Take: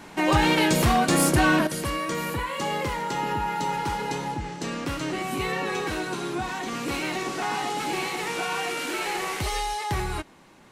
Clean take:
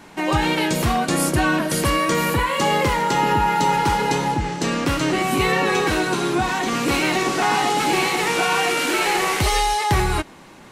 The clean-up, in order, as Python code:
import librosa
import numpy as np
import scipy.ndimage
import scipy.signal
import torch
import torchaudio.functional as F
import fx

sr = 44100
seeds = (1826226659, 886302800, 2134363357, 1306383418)

y = fx.fix_declip(x, sr, threshold_db=-14.0)
y = fx.fix_level(y, sr, at_s=1.67, step_db=9.0)